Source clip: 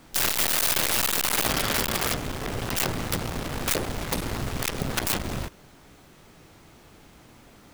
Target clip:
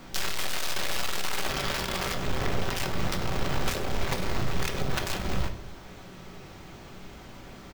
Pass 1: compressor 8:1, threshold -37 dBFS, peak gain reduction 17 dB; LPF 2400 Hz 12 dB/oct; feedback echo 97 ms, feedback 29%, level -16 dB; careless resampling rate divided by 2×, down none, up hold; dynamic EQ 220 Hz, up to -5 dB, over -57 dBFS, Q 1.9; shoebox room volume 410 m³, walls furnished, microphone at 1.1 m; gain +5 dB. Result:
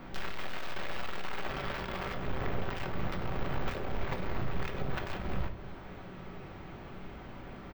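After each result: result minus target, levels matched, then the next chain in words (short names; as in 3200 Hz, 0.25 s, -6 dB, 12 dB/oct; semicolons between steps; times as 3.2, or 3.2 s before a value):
8000 Hz band -14.0 dB; compressor: peak gain reduction +5 dB
compressor 8:1, threshold -37 dBFS, peak gain reduction 17 dB; LPF 7300 Hz 12 dB/oct; feedback echo 97 ms, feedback 29%, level -16 dB; careless resampling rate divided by 2×, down none, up hold; dynamic EQ 220 Hz, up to -5 dB, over -57 dBFS, Q 1.9; shoebox room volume 410 m³, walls furnished, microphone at 1.1 m; gain +5 dB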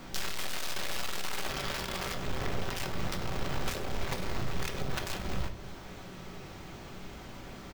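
compressor: peak gain reduction +5 dB
compressor 8:1, threshold -31 dBFS, peak gain reduction 12 dB; LPF 7300 Hz 12 dB/oct; feedback echo 97 ms, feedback 29%, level -16 dB; careless resampling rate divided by 2×, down none, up hold; dynamic EQ 220 Hz, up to -5 dB, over -57 dBFS, Q 1.9; shoebox room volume 410 m³, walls furnished, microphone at 1.1 m; gain +5 dB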